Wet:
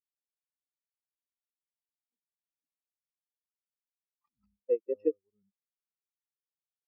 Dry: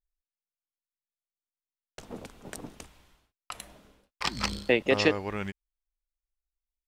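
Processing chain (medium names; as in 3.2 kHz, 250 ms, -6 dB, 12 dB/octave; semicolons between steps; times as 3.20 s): spectral contrast expander 4:1; trim -7 dB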